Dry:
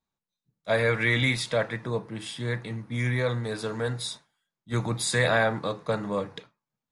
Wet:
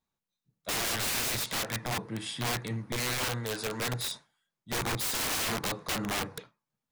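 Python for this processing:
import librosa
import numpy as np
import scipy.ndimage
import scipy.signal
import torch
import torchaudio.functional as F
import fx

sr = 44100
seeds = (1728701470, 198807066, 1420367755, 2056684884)

y = fx.low_shelf(x, sr, hz=290.0, db=-6.5, at=(2.96, 3.92))
y = (np.mod(10.0 ** (26.0 / 20.0) * y + 1.0, 2.0) - 1.0) / 10.0 ** (26.0 / 20.0)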